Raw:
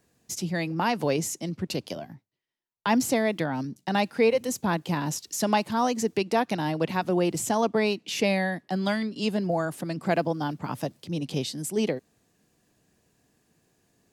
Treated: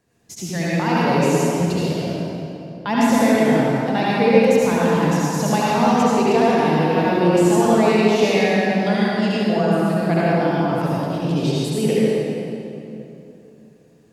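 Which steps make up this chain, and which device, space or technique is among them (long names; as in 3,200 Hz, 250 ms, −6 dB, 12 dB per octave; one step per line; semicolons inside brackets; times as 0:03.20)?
swimming-pool hall (convolution reverb RT60 2.9 s, pre-delay 65 ms, DRR −8 dB; high-shelf EQ 5,500 Hz −6.5 dB)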